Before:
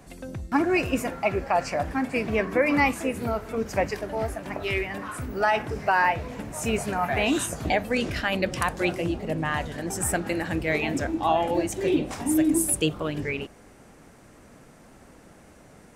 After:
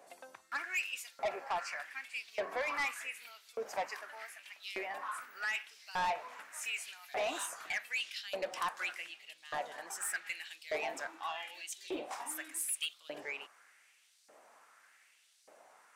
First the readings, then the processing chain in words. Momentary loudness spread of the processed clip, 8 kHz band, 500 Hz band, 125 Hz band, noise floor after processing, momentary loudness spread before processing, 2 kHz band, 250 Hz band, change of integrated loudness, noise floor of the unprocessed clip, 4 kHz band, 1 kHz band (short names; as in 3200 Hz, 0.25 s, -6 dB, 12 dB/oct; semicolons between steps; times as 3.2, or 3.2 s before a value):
10 LU, -10.0 dB, -15.5 dB, -34.0 dB, -67 dBFS, 9 LU, -9.5 dB, -28.0 dB, -13.0 dB, -52 dBFS, -7.5 dB, -12.5 dB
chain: LFO high-pass saw up 0.84 Hz 550–4700 Hz; soft clip -20.5 dBFS, distortion -9 dB; gain -9 dB